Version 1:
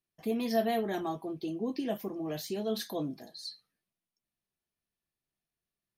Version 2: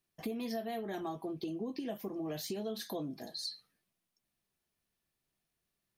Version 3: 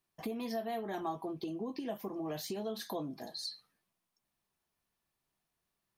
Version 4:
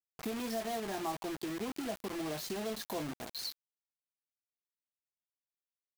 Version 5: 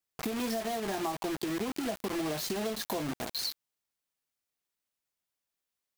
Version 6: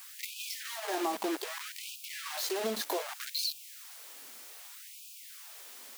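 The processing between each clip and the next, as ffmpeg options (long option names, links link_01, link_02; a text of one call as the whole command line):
ffmpeg -i in.wav -af "acompressor=threshold=-42dB:ratio=6,volume=5.5dB" out.wav
ffmpeg -i in.wav -af "equalizer=frequency=970:width_type=o:width=0.93:gain=7,volume=-1dB" out.wav
ffmpeg -i in.wav -af "acrusher=bits=6:mix=0:aa=0.000001" out.wav
ffmpeg -i in.wav -af "acompressor=threshold=-38dB:ratio=6,volume=8dB" out.wav
ffmpeg -i in.wav -af "aeval=exprs='val(0)+0.5*0.0106*sgn(val(0))':channel_layout=same,afftfilt=real='re*gte(b*sr/1024,200*pow(2400/200,0.5+0.5*sin(2*PI*0.64*pts/sr)))':imag='im*gte(b*sr/1024,200*pow(2400/200,0.5+0.5*sin(2*PI*0.64*pts/sr)))':win_size=1024:overlap=0.75" out.wav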